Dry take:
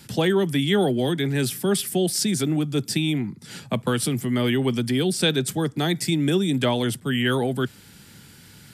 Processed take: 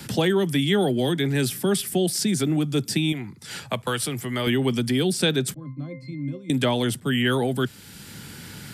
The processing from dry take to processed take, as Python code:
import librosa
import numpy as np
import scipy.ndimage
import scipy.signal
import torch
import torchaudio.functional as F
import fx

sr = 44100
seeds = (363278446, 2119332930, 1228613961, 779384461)

y = fx.peak_eq(x, sr, hz=210.0, db=-11.0, octaves=1.9, at=(3.12, 4.47))
y = fx.octave_resonator(y, sr, note='C', decay_s=0.27, at=(5.54, 6.5))
y = fx.band_squash(y, sr, depth_pct=40)